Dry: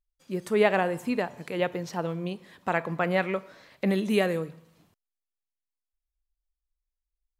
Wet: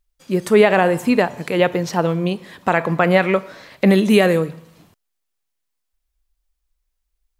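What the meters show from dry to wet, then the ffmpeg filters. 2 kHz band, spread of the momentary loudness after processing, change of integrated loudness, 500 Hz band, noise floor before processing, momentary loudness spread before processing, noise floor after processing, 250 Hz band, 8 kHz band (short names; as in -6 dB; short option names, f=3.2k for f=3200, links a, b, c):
+10.0 dB, 10 LU, +11.0 dB, +10.5 dB, under -85 dBFS, 12 LU, -76 dBFS, +11.5 dB, +11.5 dB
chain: -af "alimiter=level_in=13dB:limit=-1dB:release=50:level=0:latency=1,volume=-1dB"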